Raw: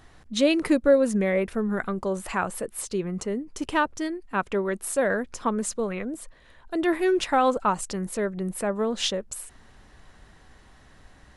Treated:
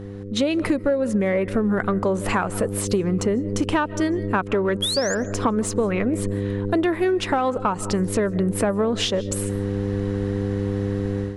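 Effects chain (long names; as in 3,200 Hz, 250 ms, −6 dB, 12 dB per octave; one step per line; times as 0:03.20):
hum with harmonics 100 Hz, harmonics 5, −39 dBFS −3 dB per octave
automatic gain control gain up to 12 dB
sound drawn into the spectrogram rise, 0:04.82–0:05.15, 3,200–7,400 Hz −17 dBFS
on a send at −22 dB: convolution reverb RT60 0.55 s, pre-delay 110 ms
on the sum: downward compressor 16 to 1, threshold −21 dBFS, peak gain reduction 15.5 dB
in parallel at −9 dB: asymmetric clip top −24 dBFS
on the sum: high-shelf EQ 4,300 Hz −7.5 dB
level +1.5 dB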